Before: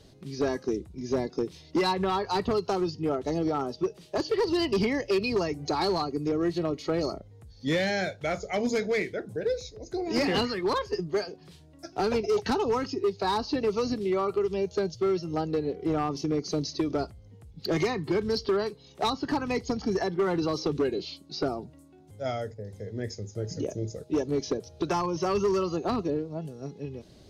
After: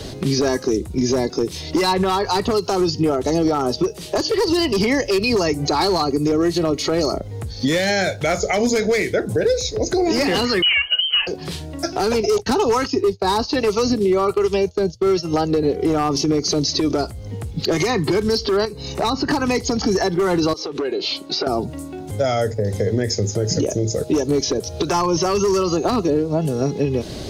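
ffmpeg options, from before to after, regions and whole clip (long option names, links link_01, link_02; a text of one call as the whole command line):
ffmpeg -i in.wav -filter_complex "[0:a]asettb=1/sr,asplit=3[link_01][link_02][link_03];[link_01]atrim=end=10.624[link_04];[link_02]atrim=start=10.62:end=11.27,asetpts=PTS-STARTPTS,afade=type=in:duration=0.004:curve=qsin,afade=type=out:start_time=0.646:duration=0.004:curve=qsin,highpass=frequency=160:width=0.5412,highpass=frequency=160:width=1.3066,volume=20.5dB,asoftclip=hard,volume=-20.5dB,lowpass=frequency=2800:width_type=q:width=0.5098,lowpass=frequency=2800:width_type=q:width=0.6013,lowpass=frequency=2800:width_type=q:width=0.9,lowpass=frequency=2800:width_type=q:width=2.563,afreqshift=-3300[link_05];[link_03]atrim=start=11.266[link_06];[link_04][link_05]acrossfade=duration=0.004:curve1=hsin:curve2=qsin[link_07];[link_07][link_06]acrossfade=duration=0.004:curve1=qsin:curve2=hsin,asettb=1/sr,asplit=3[link_08][link_09][link_10];[link_08]atrim=end=12.384[link_11];[link_09]atrim=start=12.38:end=15.63,asetpts=PTS-STARTPTS,afade=type=in:duration=0.004:curve=qsin,afade=type=out:start_time=3.246:duration=0.004:curve=qsin,agate=range=-33dB:threshold=-32dB:ratio=3:release=100:detection=peak,acrossover=split=610[link_12][link_13];[link_12]aeval=exprs='val(0)*(1-0.5/2+0.5/2*cos(2*PI*1.2*n/s))':channel_layout=same[link_14];[link_13]aeval=exprs='val(0)*(1-0.5/2-0.5/2*cos(2*PI*1.2*n/s))':channel_layout=same[link_15];[link_14][link_15]amix=inputs=2:normalize=0[link_16];[link_10]atrim=start=15.626[link_17];[link_11][link_16]acrossfade=duration=0.004:curve1=hsin:curve2=qsin[link_18];[link_18][link_17]acrossfade=duration=0.004:curve1=qsin:curve2=hsin,asettb=1/sr,asplit=3[link_19][link_20][link_21];[link_19]atrim=end=18.654[link_22];[link_20]atrim=start=18.65:end=19.31,asetpts=PTS-STARTPTS,afade=type=in:duration=0.004:curve=qsin,afade=type=out:start_time=0.656:duration=0.004:curve=qsin,bandreject=frequency=3300:width=5.8,acompressor=threshold=-45dB:ratio=2.5:attack=3.2:release=140:knee=1:detection=peak,lowshelf=frequency=160:gain=8.5[link_23];[link_21]atrim=start=19.306[link_24];[link_22][link_23]acrossfade=duration=0.004:curve1=hsin:curve2=qsin[link_25];[link_25][link_24]acrossfade=duration=0.004:curve1=qsin:curve2=hsin,asettb=1/sr,asplit=3[link_26][link_27][link_28];[link_26]atrim=end=20.534[link_29];[link_27]atrim=start=20.53:end=21.47,asetpts=PTS-STARTPTS,afade=type=in:duration=0.004:curve=qsin,afade=type=out:start_time=0.936:duration=0.004:curve=qsin,bass=frequency=250:gain=-15,treble=frequency=4000:gain=-7,acompressor=threshold=-42dB:ratio=16:attack=3.2:release=140:knee=1:detection=peak,highpass=85[link_30];[link_28]atrim=start=21.466[link_31];[link_29][link_30]acrossfade=duration=0.004:curve1=hsin:curve2=qsin[link_32];[link_32][link_31]acrossfade=duration=0.004:curve1=qsin:curve2=hsin,equalizer=frequency=160:width=1.3:gain=-3,acrossover=split=86|6400[link_33][link_34][link_35];[link_33]acompressor=threshold=-60dB:ratio=4[link_36];[link_34]acompressor=threshold=-40dB:ratio=4[link_37];[link_35]acompressor=threshold=-52dB:ratio=4[link_38];[link_36][link_37][link_38]amix=inputs=3:normalize=0,alimiter=level_in=33dB:limit=-1dB:release=50:level=0:latency=1,volume=-9dB" out.wav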